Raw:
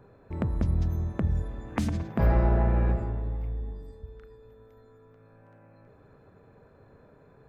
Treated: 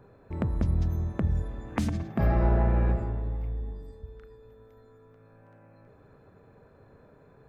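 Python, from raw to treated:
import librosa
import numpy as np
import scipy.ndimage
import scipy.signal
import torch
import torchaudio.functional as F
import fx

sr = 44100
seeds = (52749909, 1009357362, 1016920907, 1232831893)

y = fx.notch_comb(x, sr, f0_hz=490.0, at=(1.9, 2.41))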